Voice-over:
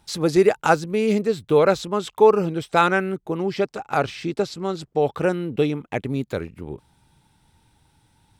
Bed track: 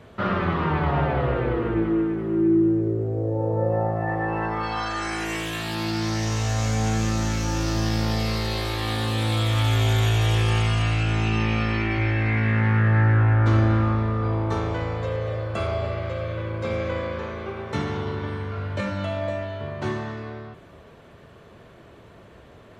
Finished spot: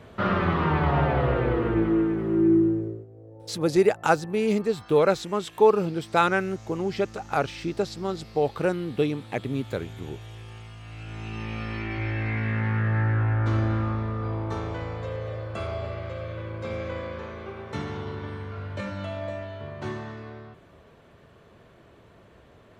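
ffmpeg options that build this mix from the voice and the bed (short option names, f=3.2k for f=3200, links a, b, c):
-filter_complex "[0:a]adelay=3400,volume=-3.5dB[a];[1:a]volume=16dB,afade=t=out:st=2.53:d=0.53:silence=0.0841395,afade=t=in:st=10.82:d=1.37:silence=0.158489[b];[a][b]amix=inputs=2:normalize=0"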